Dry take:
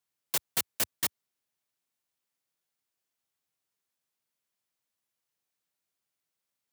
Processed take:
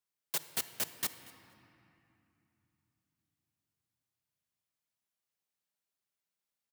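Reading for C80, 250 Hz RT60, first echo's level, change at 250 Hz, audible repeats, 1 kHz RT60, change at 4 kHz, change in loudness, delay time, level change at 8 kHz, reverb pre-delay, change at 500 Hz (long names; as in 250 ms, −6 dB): 12.0 dB, 4.4 s, −21.5 dB, −5.0 dB, 1, 2.9 s, −5.0 dB, −5.0 dB, 235 ms, −5.0 dB, 5 ms, −5.0 dB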